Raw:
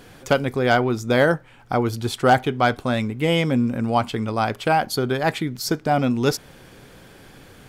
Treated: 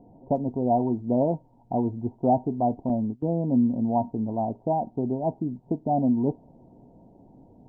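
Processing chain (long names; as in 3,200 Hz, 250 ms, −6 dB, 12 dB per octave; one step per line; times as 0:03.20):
Chebyshev low-pass with heavy ripple 960 Hz, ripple 9 dB
0:02.89–0:03.53: noise gate −29 dBFS, range −22 dB
Opus 48 kbit/s 48,000 Hz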